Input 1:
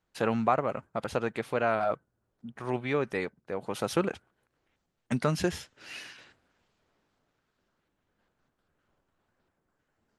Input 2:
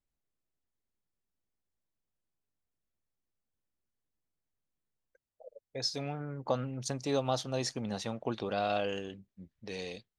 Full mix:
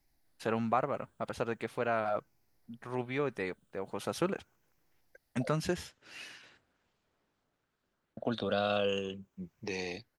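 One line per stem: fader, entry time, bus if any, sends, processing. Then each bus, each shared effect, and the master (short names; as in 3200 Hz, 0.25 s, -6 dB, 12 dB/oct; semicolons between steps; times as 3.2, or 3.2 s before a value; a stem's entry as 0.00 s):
-4.5 dB, 0.25 s, no send, dry
0.0 dB, 0.00 s, muted 5.53–8.17, no send, moving spectral ripple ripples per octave 0.75, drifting -0.4 Hz, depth 10 dB; three-band squash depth 40%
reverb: off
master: dry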